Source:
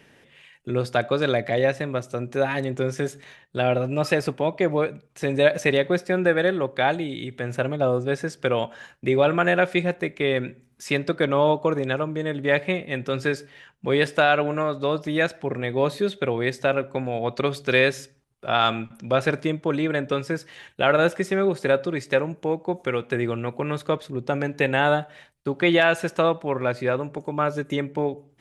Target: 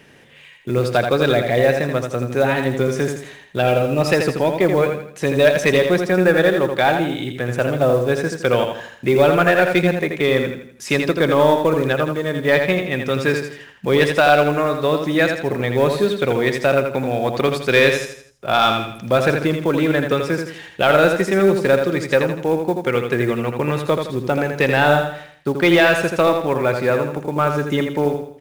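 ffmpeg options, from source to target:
-filter_complex "[0:a]acontrast=82,acrusher=bits=7:mode=log:mix=0:aa=0.000001,asplit=2[a][b];[b]aecho=0:1:82|164|246|328|410:0.501|0.2|0.0802|0.0321|0.0128[c];[a][c]amix=inputs=2:normalize=0,volume=-1.5dB"

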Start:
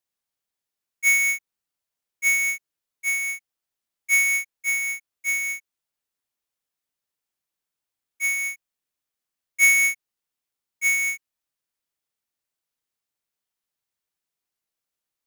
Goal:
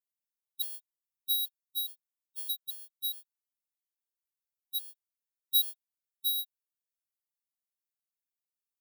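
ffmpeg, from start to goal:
-af "aderivative,asetrate=76440,aresample=44100,afftfilt=real='re*gt(sin(2*PI*2.4*pts/sr)*(1-2*mod(floor(b*sr/1024/470),2)),0)':imag='im*gt(sin(2*PI*2.4*pts/sr)*(1-2*mod(floor(b*sr/1024/470),2)),0)':win_size=1024:overlap=0.75,volume=-1.5dB"

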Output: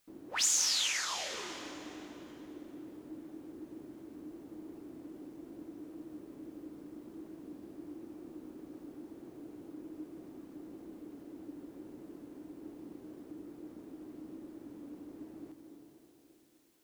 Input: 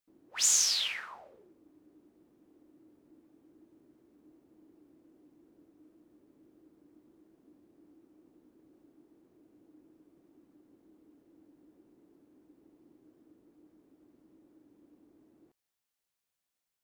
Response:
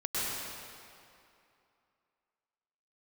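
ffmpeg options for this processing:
-filter_complex "[0:a]acompressor=threshold=-54dB:ratio=2,asplit=2[a][b];[1:a]atrim=start_sample=2205,asetrate=29988,aresample=44100,adelay=91[c];[b][c]afir=irnorm=-1:irlink=0,volume=-16dB[d];[a][d]amix=inputs=2:normalize=0,volume=13dB"

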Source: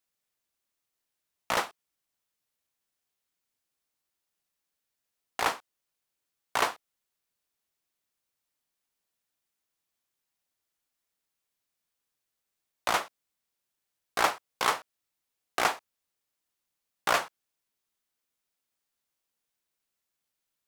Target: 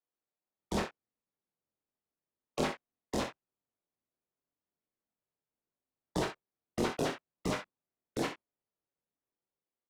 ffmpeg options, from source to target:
-filter_complex "[0:a]agate=range=-18dB:threshold=-50dB:ratio=16:detection=peak,afftfilt=real='re*lt(hypot(re,im),0.0398)':imag='im*lt(hypot(re,im),0.0398)':win_size=1024:overlap=0.75,equalizer=f=210:w=0.33:g=14,acrossover=split=120|6000[a][b][c];[a]dynaudnorm=f=310:g=7:m=9dB[d];[d][b][c]amix=inputs=3:normalize=0,asetrate=92169,aresample=44100,asoftclip=type=hard:threshold=-22dB,flanger=delay=22.5:depth=4.2:speed=1.6,adynamicsmooth=sensitivity=7.5:basefreq=3.4k,asplit=2[e][f];[f]aecho=0:1:39|64:0.355|0.316[g];[e][g]amix=inputs=2:normalize=0,volume=8dB"

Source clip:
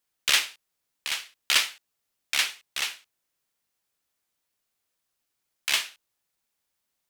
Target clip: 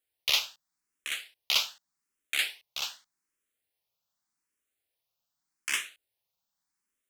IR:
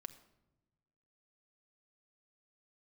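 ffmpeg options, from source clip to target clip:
-filter_complex "[0:a]asplit=2[a][b];[b]afreqshift=0.84[c];[a][c]amix=inputs=2:normalize=1,volume=-2dB"

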